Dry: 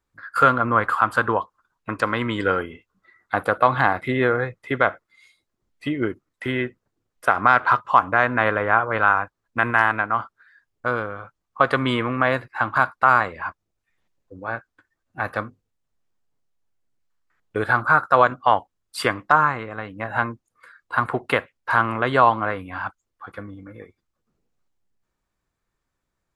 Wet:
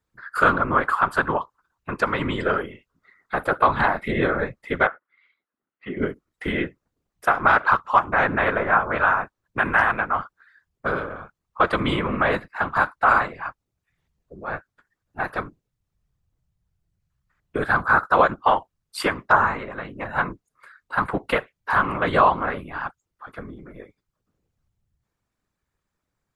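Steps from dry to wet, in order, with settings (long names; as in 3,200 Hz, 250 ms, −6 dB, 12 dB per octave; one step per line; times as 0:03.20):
0:04.87–0:05.97: loudspeaker in its box 360–2,500 Hz, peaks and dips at 430 Hz −7 dB, 660 Hz −8 dB, 950 Hz −4 dB, 1,400 Hz +3 dB, 2,300 Hz −6 dB
random phases in short frames
level −1 dB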